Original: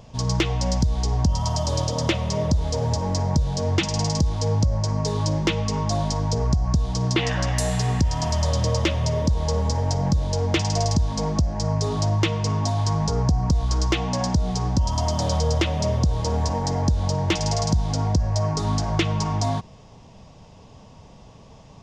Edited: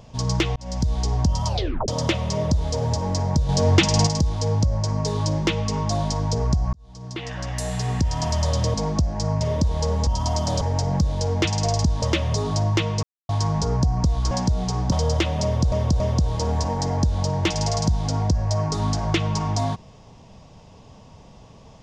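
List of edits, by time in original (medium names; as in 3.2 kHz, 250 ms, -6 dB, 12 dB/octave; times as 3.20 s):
0.56–0.90 s: fade in
1.47 s: tape stop 0.41 s
3.49–4.07 s: gain +5.5 dB
6.73–8.22 s: fade in
8.74–9.07 s: swap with 11.14–11.81 s
12.49–12.75 s: mute
13.77–14.18 s: delete
14.79–15.33 s: move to 9.73 s
15.85–16.13 s: loop, 3 plays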